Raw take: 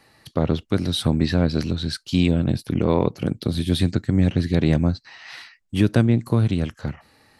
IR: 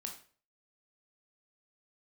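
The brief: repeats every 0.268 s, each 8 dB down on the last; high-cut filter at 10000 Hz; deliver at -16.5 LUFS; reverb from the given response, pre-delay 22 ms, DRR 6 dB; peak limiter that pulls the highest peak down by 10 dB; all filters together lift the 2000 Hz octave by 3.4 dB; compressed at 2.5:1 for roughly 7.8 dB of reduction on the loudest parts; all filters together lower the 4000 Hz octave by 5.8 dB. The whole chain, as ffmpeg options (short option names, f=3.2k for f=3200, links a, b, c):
-filter_complex "[0:a]lowpass=10k,equalizer=f=2k:t=o:g=6.5,equalizer=f=4k:t=o:g=-8.5,acompressor=threshold=-25dB:ratio=2.5,alimiter=limit=-18.5dB:level=0:latency=1,aecho=1:1:268|536|804|1072|1340:0.398|0.159|0.0637|0.0255|0.0102,asplit=2[a][b];[1:a]atrim=start_sample=2205,adelay=22[c];[b][c]afir=irnorm=-1:irlink=0,volume=-3.5dB[d];[a][d]amix=inputs=2:normalize=0,volume=12.5dB"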